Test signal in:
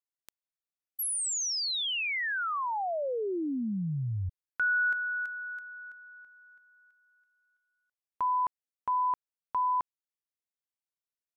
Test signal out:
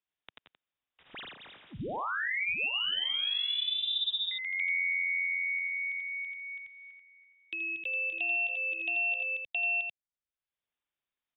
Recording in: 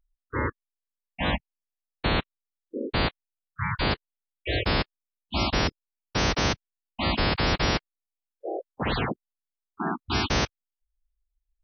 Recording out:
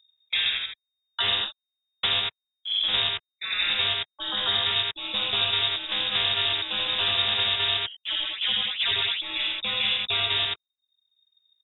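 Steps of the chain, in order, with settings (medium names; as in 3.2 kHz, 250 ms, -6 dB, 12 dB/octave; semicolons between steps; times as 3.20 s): waveshaping leveller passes 3; distance through air 150 m; delay 87 ms -3.5 dB; ever faster or slower copies 108 ms, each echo +1 st, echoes 2, each echo -6 dB; frequency inversion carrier 3.7 kHz; three bands compressed up and down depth 70%; trim -8.5 dB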